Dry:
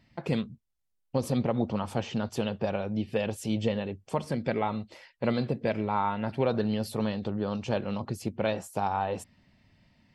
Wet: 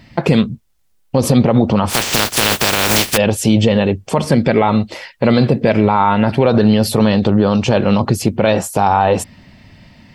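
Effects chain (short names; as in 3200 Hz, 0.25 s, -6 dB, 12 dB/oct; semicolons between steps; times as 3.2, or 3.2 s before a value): 1.89–3.16 spectral contrast lowered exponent 0.22; maximiser +21 dB; gain -1 dB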